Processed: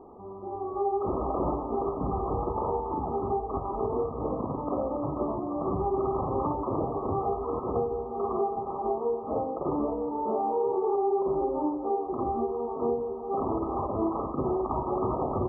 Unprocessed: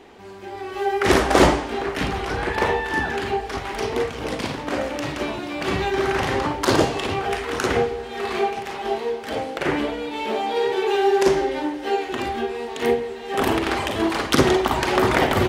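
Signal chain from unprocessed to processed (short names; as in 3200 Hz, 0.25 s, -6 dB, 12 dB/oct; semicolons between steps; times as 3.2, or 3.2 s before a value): compressor 3:1, threshold -22 dBFS, peak gain reduction 10 dB; limiter -16.5 dBFS, peak gain reduction 9.5 dB; brick-wall FIR low-pass 1300 Hz; gain -1.5 dB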